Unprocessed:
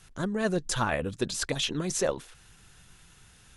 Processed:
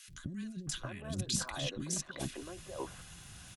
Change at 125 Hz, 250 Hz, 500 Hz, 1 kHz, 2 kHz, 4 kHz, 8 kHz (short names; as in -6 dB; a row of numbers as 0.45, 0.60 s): -5.5, -8.5, -14.0, -12.5, -11.0, -6.5, -4.0 dB